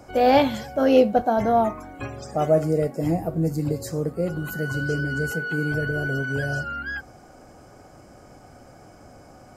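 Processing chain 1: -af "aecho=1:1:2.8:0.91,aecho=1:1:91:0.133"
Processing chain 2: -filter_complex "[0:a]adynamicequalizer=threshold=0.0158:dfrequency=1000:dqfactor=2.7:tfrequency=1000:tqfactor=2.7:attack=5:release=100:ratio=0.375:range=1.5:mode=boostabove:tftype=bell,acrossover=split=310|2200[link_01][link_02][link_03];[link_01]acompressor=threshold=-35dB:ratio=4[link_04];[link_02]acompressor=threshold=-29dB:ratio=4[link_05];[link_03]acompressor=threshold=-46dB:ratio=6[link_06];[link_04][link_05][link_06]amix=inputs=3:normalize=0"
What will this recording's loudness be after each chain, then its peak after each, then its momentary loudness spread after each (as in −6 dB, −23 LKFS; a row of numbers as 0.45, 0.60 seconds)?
−21.5, −30.5 LKFS; −4.5, −16.5 dBFS; 11, 20 LU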